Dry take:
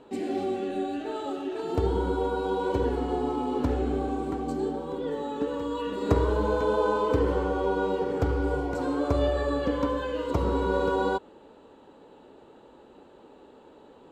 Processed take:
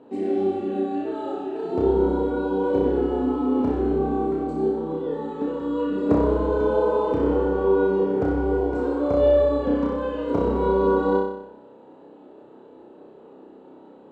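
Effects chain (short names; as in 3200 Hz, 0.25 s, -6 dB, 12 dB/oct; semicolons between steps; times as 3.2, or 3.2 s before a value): HPF 260 Hz 12 dB/oct; tilt -4 dB/oct; on a send: flutter echo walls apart 5.3 m, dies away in 0.76 s; on the sum: gain -2 dB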